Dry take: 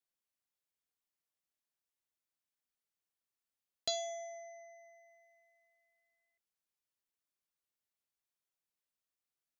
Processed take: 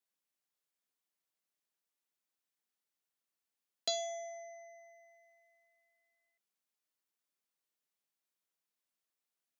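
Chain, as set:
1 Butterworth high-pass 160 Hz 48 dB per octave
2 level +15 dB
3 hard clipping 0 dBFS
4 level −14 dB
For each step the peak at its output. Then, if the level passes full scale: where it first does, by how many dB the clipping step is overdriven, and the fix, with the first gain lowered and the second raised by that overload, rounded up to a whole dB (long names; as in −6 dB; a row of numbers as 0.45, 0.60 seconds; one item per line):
−19.0, −4.0, −4.0, −18.0 dBFS
no step passes full scale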